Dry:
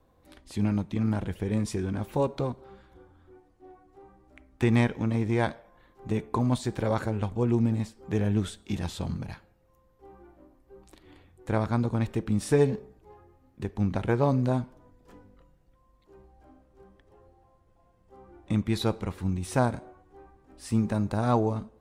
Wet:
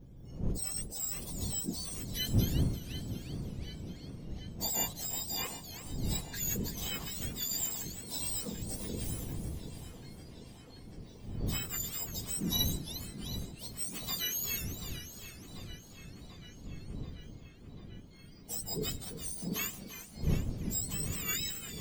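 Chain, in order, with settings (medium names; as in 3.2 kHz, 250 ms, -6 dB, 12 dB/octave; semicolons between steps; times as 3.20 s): spectrum inverted on a logarithmic axis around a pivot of 1.3 kHz; wind noise 160 Hz -36 dBFS; peaking EQ 1.5 kHz -7.5 dB 1.9 oct; on a send: tape echo 738 ms, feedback 80%, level -10 dB, low-pass 4.6 kHz; on the sum: modulated delay 347 ms, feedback 52%, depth 189 cents, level -11.5 dB; trim -4.5 dB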